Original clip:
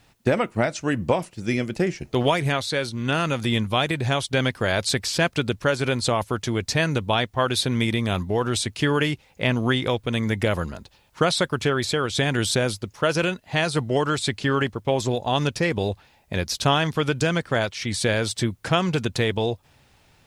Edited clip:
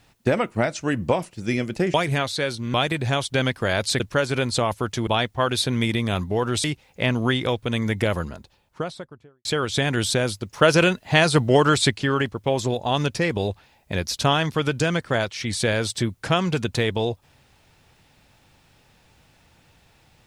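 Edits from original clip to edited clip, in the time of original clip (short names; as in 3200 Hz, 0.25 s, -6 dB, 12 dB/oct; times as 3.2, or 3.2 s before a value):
1.94–2.28 cut
3.08–3.73 cut
4.99–5.5 cut
6.57–7.06 cut
8.63–9.05 cut
10.47–11.86 studio fade out
12.94–14.32 gain +5.5 dB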